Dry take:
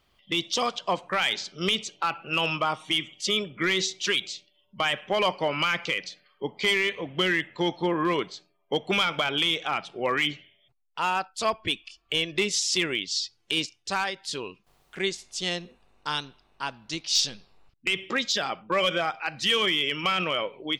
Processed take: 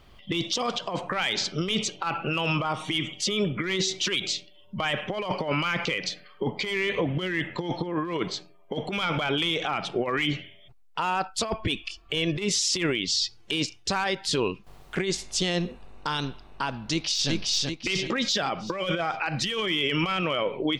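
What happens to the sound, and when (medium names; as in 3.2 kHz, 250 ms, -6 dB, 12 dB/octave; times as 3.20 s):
16.91–17.31 s: echo throw 380 ms, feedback 40%, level -4.5 dB
whole clip: tilt EQ -1.5 dB/octave; compressor with a negative ratio -29 dBFS, ratio -0.5; peak limiter -24 dBFS; trim +7.5 dB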